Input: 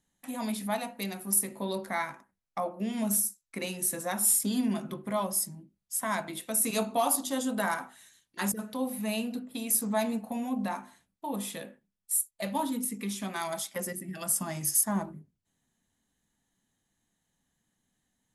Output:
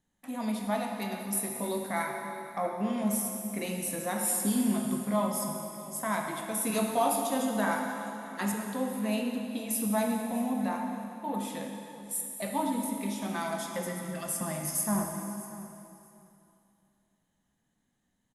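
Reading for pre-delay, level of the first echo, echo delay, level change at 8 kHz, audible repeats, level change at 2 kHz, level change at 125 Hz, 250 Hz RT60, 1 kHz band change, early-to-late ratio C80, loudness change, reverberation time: 10 ms, -17.0 dB, 638 ms, -4.5 dB, 2, 0.0 dB, +2.0 dB, 2.8 s, +1.5 dB, 3.5 dB, -1.5 dB, 2.8 s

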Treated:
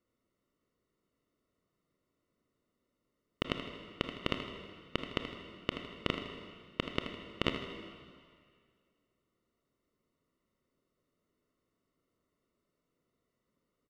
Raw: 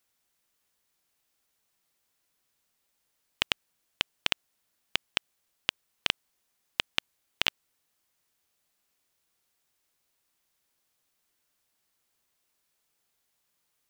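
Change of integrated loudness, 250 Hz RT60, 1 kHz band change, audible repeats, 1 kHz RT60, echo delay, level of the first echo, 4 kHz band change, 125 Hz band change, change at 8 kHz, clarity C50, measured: -7.5 dB, 1.9 s, -1.5 dB, 2, 2.0 s, 79 ms, -10.0 dB, -10.0 dB, +8.5 dB, -17.0 dB, 4.5 dB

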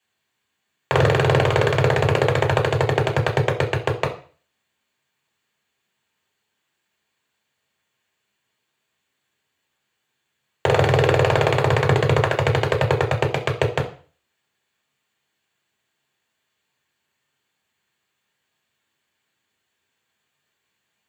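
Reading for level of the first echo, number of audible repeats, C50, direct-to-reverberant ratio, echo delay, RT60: no echo, no echo, 12.0 dB, -2.5 dB, no echo, 0.40 s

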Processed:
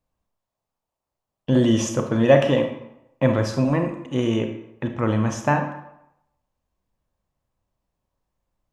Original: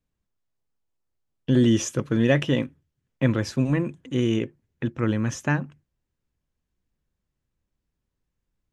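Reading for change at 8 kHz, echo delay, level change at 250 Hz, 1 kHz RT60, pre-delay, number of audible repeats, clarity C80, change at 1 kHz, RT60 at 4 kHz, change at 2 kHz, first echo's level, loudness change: +1.0 dB, no echo, +1.5 dB, 0.85 s, 29 ms, no echo, 10.5 dB, +10.0 dB, 0.60 s, +1.0 dB, no echo, +2.5 dB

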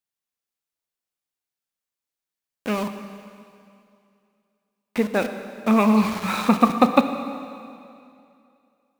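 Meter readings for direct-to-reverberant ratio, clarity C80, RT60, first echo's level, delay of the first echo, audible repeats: 8.0 dB, 9.5 dB, 2.5 s, no echo, no echo, no echo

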